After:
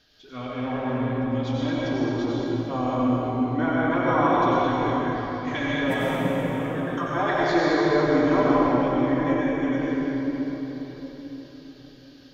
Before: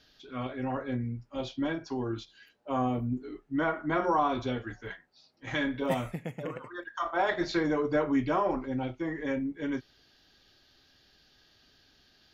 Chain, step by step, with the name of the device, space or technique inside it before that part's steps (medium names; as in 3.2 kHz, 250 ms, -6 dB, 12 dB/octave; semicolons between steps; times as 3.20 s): cathedral (reverberation RT60 4.7 s, pre-delay 82 ms, DRR -7 dB)